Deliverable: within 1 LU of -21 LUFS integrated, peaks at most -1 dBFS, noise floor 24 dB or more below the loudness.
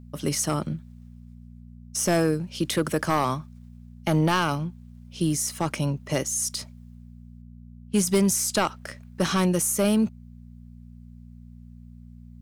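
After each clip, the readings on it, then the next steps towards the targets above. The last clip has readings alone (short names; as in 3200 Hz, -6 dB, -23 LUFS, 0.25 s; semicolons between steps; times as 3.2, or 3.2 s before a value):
clipped 0.5%; flat tops at -14.5 dBFS; hum 60 Hz; harmonics up to 240 Hz; hum level -44 dBFS; loudness -25.0 LUFS; peak -14.5 dBFS; loudness target -21.0 LUFS
-> clip repair -14.5 dBFS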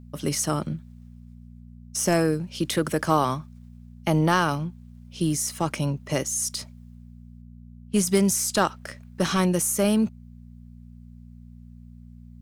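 clipped 0.0%; hum 60 Hz; harmonics up to 240 Hz; hum level -43 dBFS
-> de-hum 60 Hz, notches 4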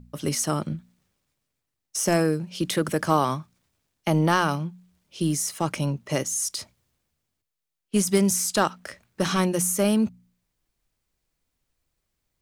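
hum none; loudness -24.5 LUFS; peak -6.0 dBFS; loudness target -21.0 LUFS
-> gain +3.5 dB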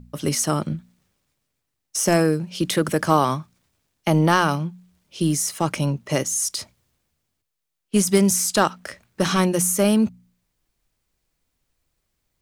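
loudness -21.0 LUFS; peak -2.5 dBFS; noise floor -79 dBFS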